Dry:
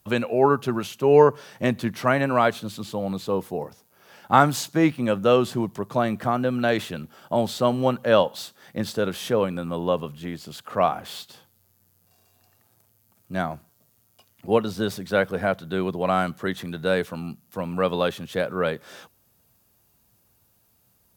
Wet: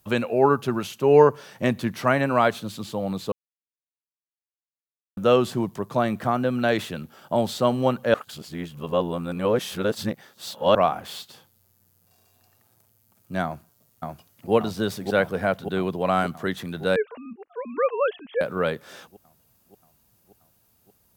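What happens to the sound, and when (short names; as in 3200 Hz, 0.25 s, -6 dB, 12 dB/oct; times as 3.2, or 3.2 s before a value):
3.32–5.17 mute
8.14–10.75 reverse
13.44–14.52 echo throw 0.58 s, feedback 70%, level -2 dB
16.96–18.41 sine-wave speech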